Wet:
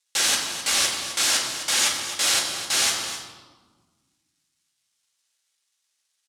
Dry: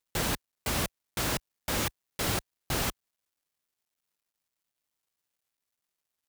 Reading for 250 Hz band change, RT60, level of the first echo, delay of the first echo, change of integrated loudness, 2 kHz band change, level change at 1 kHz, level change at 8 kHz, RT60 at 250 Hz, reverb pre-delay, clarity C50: -5.0 dB, 1.4 s, -10.0 dB, 0.259 s, +10.5 dB, +9.5 dB, +5.0 dB, +14.5 dB, 2.2 s, 4 ms, 3.0 dB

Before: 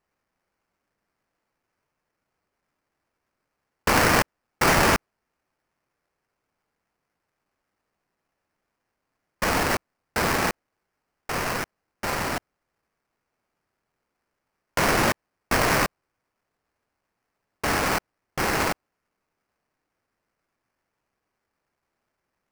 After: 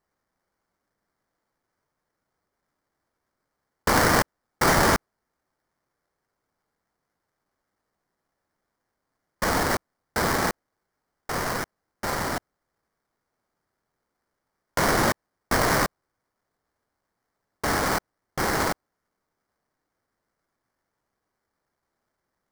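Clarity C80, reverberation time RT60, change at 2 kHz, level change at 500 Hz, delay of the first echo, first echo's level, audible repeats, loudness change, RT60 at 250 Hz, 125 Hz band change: none, none, -1.5 dB, 0.0 dB, none, none, none, -0.5 dB, none, 0.0 dB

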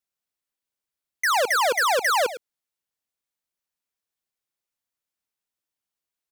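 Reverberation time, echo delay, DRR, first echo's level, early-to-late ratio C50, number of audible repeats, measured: none, 0.107 s, none, -13.5 dB, none, 1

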